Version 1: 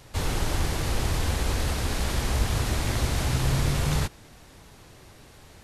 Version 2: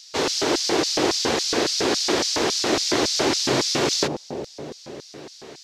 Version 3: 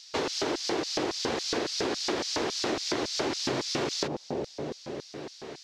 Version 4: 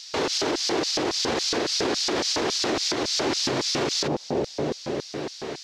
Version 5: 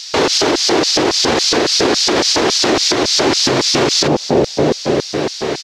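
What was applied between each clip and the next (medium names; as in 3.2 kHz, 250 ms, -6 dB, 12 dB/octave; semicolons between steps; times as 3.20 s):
resonant high shelf 7.9 kHz -12 dB, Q 1.5; bucket-brigade echo 182 ms, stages 1024, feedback 75%, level -7 dB; LFO high-pass square 3.6 Hz 350–4900 Hz; trim +8 dB
low-pass 3.6 kHz 6 dB/octave; compression, threshold -27 dBFS, peak gain reduction 10 dB
peak limiter -24.5 dBFS, peak gain reduction 9.5 dB; trim +8.5 dB
in parallel at -3 dB: gain riding within 4 dB; on the sum: delay 268 ms -14.5 dB; trim +7 dB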